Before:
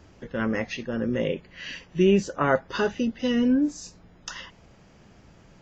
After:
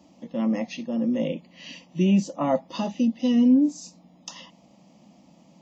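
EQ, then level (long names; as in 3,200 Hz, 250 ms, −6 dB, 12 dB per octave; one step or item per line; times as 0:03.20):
Bessel high-pass filter 180 Hz, order 4
low-shelf EQ 340 Hz +9 dB
phaser with its sweep stopped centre 410 Hz, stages 6
0.0 dB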